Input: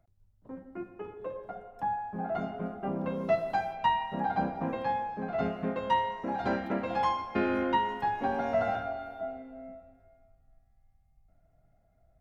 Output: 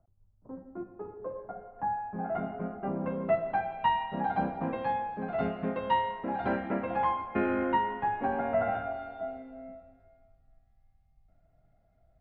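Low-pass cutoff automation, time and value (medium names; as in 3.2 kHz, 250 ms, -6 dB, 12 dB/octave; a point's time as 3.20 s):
low-pass 24 dB/octave
1.17 s 1.3 kHz
2.18 s 2.4 kHz
3.51 s 2.4 kHz
4.04 s 3.6 kHz
6.06 s 3.6 kHz
6.98 s 2.5 kHz
8.68 s 2.5 kHz
9.34 s 4.7 kHz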